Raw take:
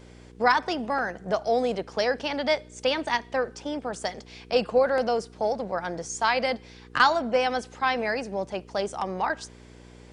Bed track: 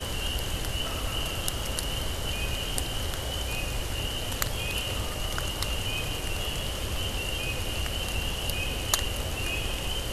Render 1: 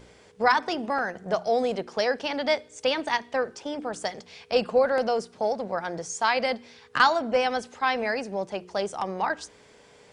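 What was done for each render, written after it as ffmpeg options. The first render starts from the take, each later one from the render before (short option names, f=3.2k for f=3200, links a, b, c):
-af "bandreject=f=60:t=h:w=4,bandreject=f=120:t=h:w=4,bandreject=f=180:t=h:w=4,bandreject=f=240:t=h:w=4,bandreject=f=300:t=h:w=4,bandreject=f=360:t=h:w=4"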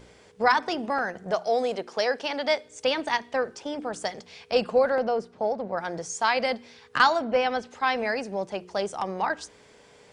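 -filter_complex "[0:a]asettb=1/sr,asplit=3[a][b][c];[a]atrim=end=1.314[d];[b]atrim=start=1.31:end=2.65,asetpts=PTS-STARTPTS,afade=t=in:d=0.004:c=qsin,afade=t=out:st=1.336:d=0.004:c=qsin,bass=f=250:g=-8,treble=f=4k:g=1[e];[c]atrim=start=2.646[f];[d][e]acrossfade=d=0.004:c1=hsin:c2=qsin[g];[g][f]acrossfade=d=0.004:c1=qsin:c2=hsin,asettb=1/sr,asplit=3[h][i][j];[h]atrim=end=4.954[k];[i]atrim=start=4.95:end=5.77,asetpts=PTS-STARTPTS,afade=t=in:d=0.004:c=qsin,afade=t=out:st=0.816:d=0.004:c=qsin,lowpass=f=1.7k:p=1[l];[j]atrim=start=5.766[m];[k][l]acrossfade=d=0.004:c1=hsin:c2=qsin[n];[n][m]acrossfade=d=0.004:c1=qsin:c2=hsin,asettb=1/sr,asplit=3[o][p][q];[o]atrim=end=7.244[r];[p]atrim=start=7.24:end=7.71,asetpts=PTS-STARTPTS,afade=t=in:d=0.004:c=qsin,afade=t=out:st=0.466:d=0.004:c=qsin,lowpass=4.4k[s];[q]atrim=start=7.706[t];[r][s]acrossfade=d=0.004:c1=hsin:c2=qsin[u];[u][t]acrossfade=d=0.004:c1=qsin:c2=hsin"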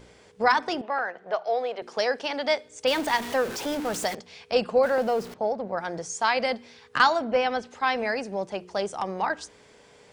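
-filter_complex "[0:a]asettb=1/sr,asplit=3[a][b][c];[a]atrim=end=0.814[d];[b]atrim=start=0.81:end=1.82,asetpts=PTS-STARTPTS,afade=t=in:d=0.004:c=qsin,afade=t=out:st=1.006:d=0.004:c=qsin,acrossover=split=400 4000:gain=0.126 1 0.0631[e][f][g];[e][f][g]amix=inputs=3:normalize=0[h];[c]atrim=start=1.816[i];[d][h]acrossfade=d=0.004:c1=hsin:c2=qsin[j];[j][i]acrossfade=d=0.004:c1=qsin:c2=hsin,asettb=1/sr,asplit=3[k][l][m];[k]atrim=end=2.874[n];[l]atrim=start=2.87:end=4.15,asetpts=PTS-STARTPTS,afade=t=in:d=0.004:c=qsin,afade=t=out:st=1.276:d=0.004:c=qsin,aeval=exprs='val(0)+0.5*0.0316*sgn(val(0))':c=same[o];[m]atrim=start=4.146[p];[n][o]acrossfade=d=0.004:c1=hsin:c2=qsin[q];[q][p]acrossfade=d=0.004:c1=qsin:c2=hsin,asettb=1/sr,asplit=3[r][s][t];[r]atrim=end=4.834[u];[s]atrim=start=4.83:end=5.34,asetpts=PTS-STARTPTS,afade=t=in:d=0.004:c=qsin,afade=t=out:st=0.506:d=0.004:c=qsin,aeval=exprs='val(0)+0.5*0.015*sgn(val(0))':c=same[v];[t]atrim=start=5.336[w];[u][v]acrossfade=d=0.004:c1=hsin:c2=qsin[x];[x][w]acrossfade=d=0.004:c1=qsin:c2=hsin"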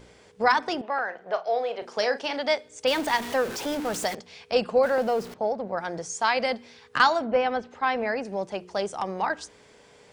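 -filter_complex "[0:a]asettb=1/sr,asplit=3[a][b][c];[a]atrim=end=1.054[d];[b]atrim=start=1.05:end=2.4,asetpts=PTS-STARTPTS,afade=t=in:d=0.004:c=qsin,afade=t=out:st=1.346:d=0.004:c=qsin,asplit=2[e][f];[f]adelay=38,volume=-11dB[g];[e][g]amix=inputs=2:normalize=0,atrim=end_sample=59535[h];[c]atrim=start=2.396[i];[d][h]acrossfade=d=0.004:c1=hsin:c2=qsin[j];[j][i]acrossfade=d=0.004:c1=qsin:c2=hsin,asettb=1/sr,asplit=3[k][l][m];[k]atrim=end=7.264[n];[l]atrim=start=7.26:end=8.25,asetpts=PTS-STARTPTS,afade=t=in:d=0.004:c=qsin,afade=t=out:st=0.986:d=0.004:c=qsin,aemphasis=mode=reproduction:type=75fm[o];[m]atrim=start=8.246[p];[n][o]acrossfade=d=0.004:c1=hsin:c2=qsin[q];[q][p]acrossfade=d=0.004:c1=qsin:c2=hsin"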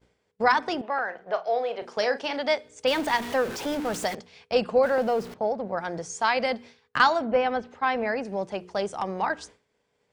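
-af "agate=range=-33dB:threshold=-41dB:ratio=3:detection=peak,bass=f=250:g=2,treble=f=4k:g=-3"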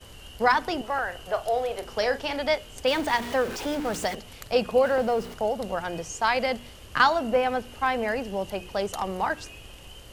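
-filter_complex "[1:a]volume=-14.5dB[a];[0:a][a]amix=inputs=2:normalize=0"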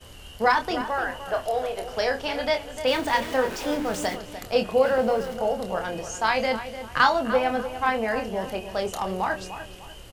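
-filter_complex "[0:a]asplit=2[a][b];[b]adelay=27,volume=-7dB[c];[a][c]amix=inputs=2:normalize=0,asplit=2[d][e];[e]adelay=298,lowpass=f=2.5k:p=1,volume=-11dB,asplit=2[f][g];[g]adelay=298,lowpass=f=2.5k:p=1,volume=0.35,asplit=2[h][i];[i]adelay=298,lowpass=f=2.5k:p=1,volume=0.35,asplit=2[j][k];[k]adelay=298,lowpass=f=2.5k:p=1,volume=0.35[l];[f][h][j][l]amix=inputs=4:normalize=0[m];[d][m]amix=inputs=2:normalize=0"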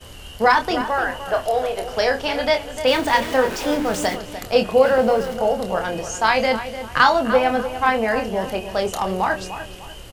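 -af "volume=5.5dB,alimiter=limit=-3dB:level=0:latency=1"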